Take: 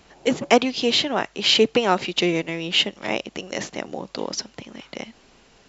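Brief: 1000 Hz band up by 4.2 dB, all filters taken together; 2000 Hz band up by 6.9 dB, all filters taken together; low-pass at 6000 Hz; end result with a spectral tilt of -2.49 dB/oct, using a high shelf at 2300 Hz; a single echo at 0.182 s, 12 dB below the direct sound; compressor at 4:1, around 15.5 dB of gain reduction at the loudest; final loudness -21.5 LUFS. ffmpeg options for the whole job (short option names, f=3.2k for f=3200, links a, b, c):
-af "lowpass=6k,equalizer=f=1k:t=o:g=4,equalizer=f=2k:t=o:g=5,highshelf=f=2.3k:g=5,acompressor=threshold=-28dB:ratio=4,aecho=1:1:182:0.251,volume=9dB"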